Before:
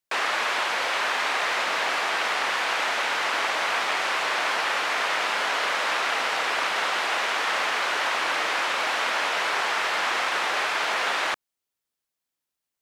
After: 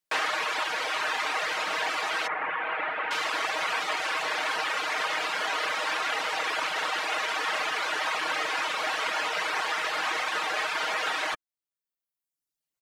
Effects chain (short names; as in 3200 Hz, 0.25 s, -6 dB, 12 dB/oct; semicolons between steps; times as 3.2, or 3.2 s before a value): 2.27–3.11 LPF 2400 Hz 24 dB/oct; reverb removal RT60 1.1 s; comb 6.4 ms, depth 56%; gain -2 dB